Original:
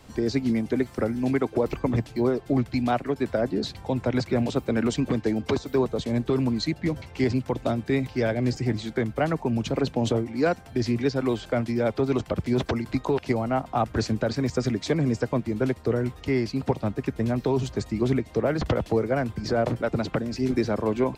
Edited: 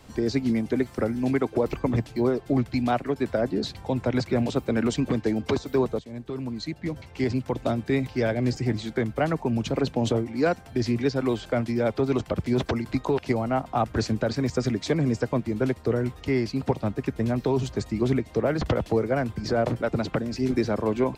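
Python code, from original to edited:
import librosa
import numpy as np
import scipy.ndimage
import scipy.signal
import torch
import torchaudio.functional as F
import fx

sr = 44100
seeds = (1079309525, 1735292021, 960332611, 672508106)

y = fx.edit(x, sr, fx.fade_in_from(start_s=5.99, length_s=1.68, floor_db=-15.0), tone=tone)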